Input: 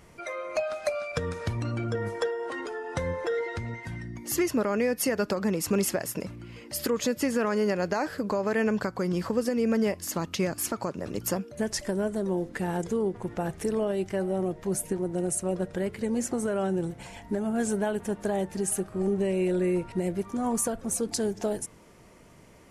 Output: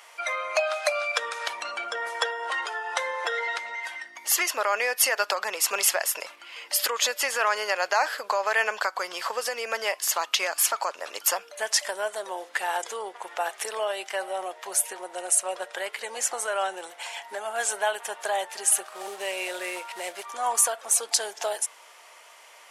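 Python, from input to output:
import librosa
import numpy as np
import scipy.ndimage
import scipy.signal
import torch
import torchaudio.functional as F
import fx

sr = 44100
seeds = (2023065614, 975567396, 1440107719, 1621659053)

y = fx.cvsd(x, sr, bps=64000, at=(18.84, 20.25))
y = scipy.signal.sosfilt(scipy.signal.butter(4, 710.0, 'highpass', fs=sr, output='sos'), y)
y = fx.peak_eq(y, sr, hz=3200.0, db=5.0, octaves=0.63)
y = F.gain(torch.from_numpy(y), 8.5).numpy()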